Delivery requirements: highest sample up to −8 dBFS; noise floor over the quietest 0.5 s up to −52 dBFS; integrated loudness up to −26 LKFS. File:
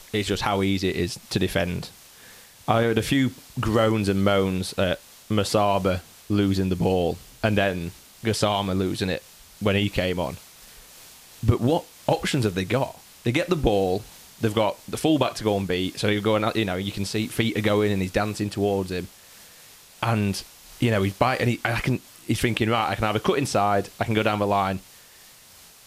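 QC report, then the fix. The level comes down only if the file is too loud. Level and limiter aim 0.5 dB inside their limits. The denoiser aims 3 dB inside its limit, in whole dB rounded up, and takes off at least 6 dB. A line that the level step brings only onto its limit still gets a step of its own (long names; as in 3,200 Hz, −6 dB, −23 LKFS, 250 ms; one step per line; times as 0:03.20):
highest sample −7.0 dBFS: out of spec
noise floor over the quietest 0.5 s −50 dBFS: out of spec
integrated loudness −24.5 LKFS: out of spec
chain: broadband denoise 6 dB, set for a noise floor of −50 dBFS
level −2 dB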